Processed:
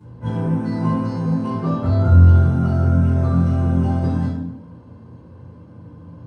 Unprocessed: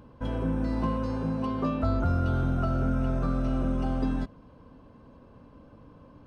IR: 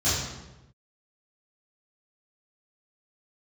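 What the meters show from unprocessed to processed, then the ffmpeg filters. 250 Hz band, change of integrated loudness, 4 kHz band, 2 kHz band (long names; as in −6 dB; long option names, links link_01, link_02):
+8.0 dB, +11.0 dB, can't be measured, +5.0 dB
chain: -filter_complex "[0:a]lowshelf=frequency=72:gain=-5.5[link_01];[1:a]atrim=start_sample=2205,asetrate=57330,aresample=44100[link_02];[link_01][link_02]afir=irnorm=-1:irlink=0,volume=-7dB"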